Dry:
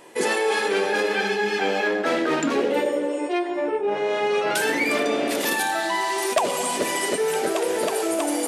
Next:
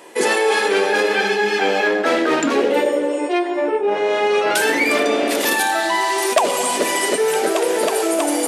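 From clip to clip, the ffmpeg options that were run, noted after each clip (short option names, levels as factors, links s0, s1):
-af "highpass=220,volume=1.88"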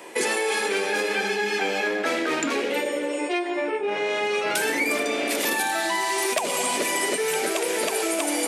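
-filter_complex "[0:a]equalizer=f=2300:t=o:w=0.24:g=5.5,acrossover=split=230|1500|6000[s0][s1][s2][s3];[s0]acompressor=threshold=0.0112:ratio=4[s4];[s1]acompressor=threshold=0.0447:ratio=4[s5];[s2]acompressor=threshold=0.0355:ratio=4[s6];[s3]acompressor=threshold=0.0355:ratio=4[s7];[s4][s5][s6][s7]amix=inputs=4:normalize=0"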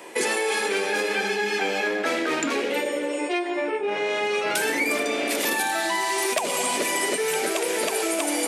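-af anull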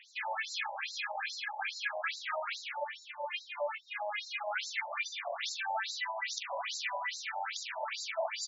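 -filter_complex "[0:a]asplit=2[s0][s1];[s1]aecho=0:1:43|67:0.422|0.282[s2];[s0][s2]amix=inputs=2:normalize=0,afftfilt=real='re*between(b*sr/1024,730*pow(5400/730,0.5+0.5*sin(2*PI*2.4*pts/sr))/1.41,730*pow(5400/730,0.5+0.5*sin(2*PI*2.4*pts/sr))*1.41)':imag='im*between(b*sr/1024,730*pow(5400/730,0.5+0.5*sin(2*PI*2.4*pts/sr))/1.41,730*pow(5400/730,0.5+0.5*sin(2*PI*2.4*pts/sr))*1.41)':win_size=1024:overlap=0.75,volume=0.562"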